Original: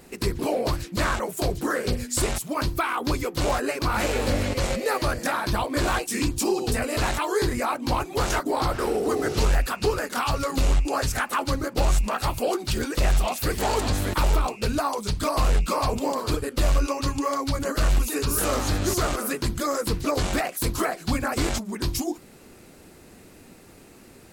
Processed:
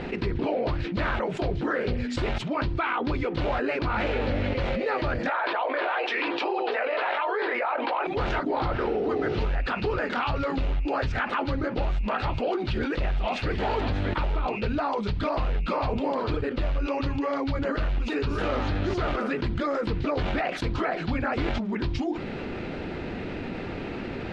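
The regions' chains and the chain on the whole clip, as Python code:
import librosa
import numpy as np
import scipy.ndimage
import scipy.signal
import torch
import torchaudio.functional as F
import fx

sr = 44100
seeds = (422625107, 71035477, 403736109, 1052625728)

y = fx.chain(x, sr, fx.highpass(hz=510.0, slope=24),
    fx.air_absorb(metres=310.0),
    fx.env_flatten(amount_pct=70), at=(5.29, 8.07))
y = scipy.signal.sosfilt(scipy.signal.butter(4, 3400.0, 'lowpass', fs=sr, output='sos'), y)
y = fx.notch(y, sr, hz=1100.0, q=12.0)
y = fx.env_flatten(y, sr, amount_pct=70)
y = F.gain(torch.from_numpy(y), -7.0).numpy()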